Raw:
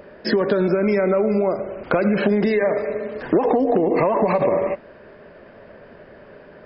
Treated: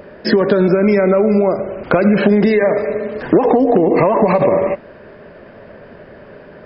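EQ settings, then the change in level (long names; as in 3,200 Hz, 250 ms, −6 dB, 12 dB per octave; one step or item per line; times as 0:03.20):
parametric band 120 Hz +3 dB 2.3 octaves
+5.0 dB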